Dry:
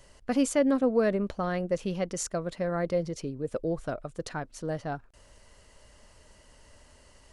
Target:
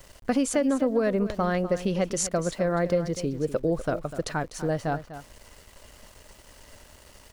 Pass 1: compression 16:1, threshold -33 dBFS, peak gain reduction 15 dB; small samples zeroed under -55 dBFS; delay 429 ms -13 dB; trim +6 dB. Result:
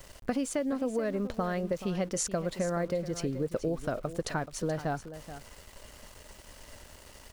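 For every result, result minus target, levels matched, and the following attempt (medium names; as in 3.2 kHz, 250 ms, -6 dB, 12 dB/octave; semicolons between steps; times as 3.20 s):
echo 181 ms late; compression: peak gain reduction +7 dB
compression 16:1, threshold -33 dBFS, peak gain reduction 15 dB; small samples zeroed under -55 dBFS; delay 248 ms -13 dB; trim +6 dB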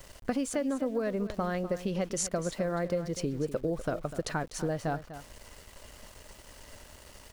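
compression: peak gain reduction +7 dB
compression 16:1, threshold -25.5 dBFS, peak gain reduction 8 dB; small samples zeroed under -55 dBFS; delay 248 ms -13 dB; trim +6 dB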